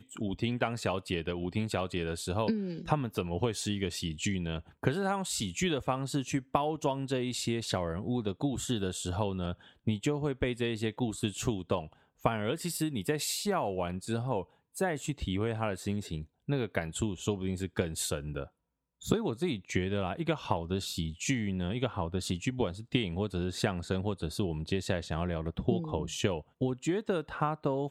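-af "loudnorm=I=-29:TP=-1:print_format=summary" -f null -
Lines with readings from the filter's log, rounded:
Input Integrated:    -33.2 LUFS
Input True Peak:      -9.7 dBTP
Input LRA:             1.6 LU
Input Threshold:     -43.2 LUFS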